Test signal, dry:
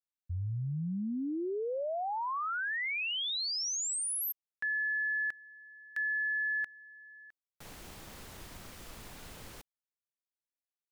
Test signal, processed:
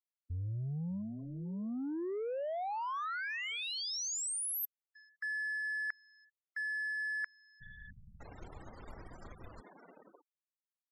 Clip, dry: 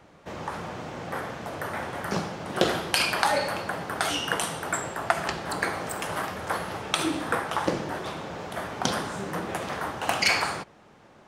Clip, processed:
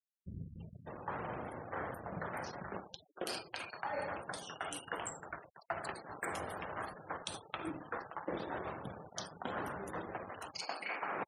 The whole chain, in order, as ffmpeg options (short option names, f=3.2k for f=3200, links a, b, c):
-filter_complex "[0:a]acrossover=split=190|2900[a][b][c];[c]adelay=330[d];[b]adelay=600[e];[a][e][d]amix=inputs=3:normalize=0,areverse,acompressor=threshold=-38dB:ratio=12:attack=11:release=875:knee=1:detection=rms,areverse,aeval=exprs='sgn(val(0))*max(abs(val(0))-0.00158,0)':c=same,afftfilt=real='re*gte(hypot(re,im),0.00282)':imag='im*gte(hypot(re,im),0.00282)':win_size=1024:overlap=0.75,volume=4.5dB"